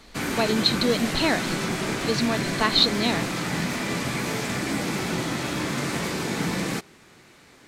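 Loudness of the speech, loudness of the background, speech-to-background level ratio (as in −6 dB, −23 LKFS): −23.5 LKFS, −27.0 LKFS, 3.5 dB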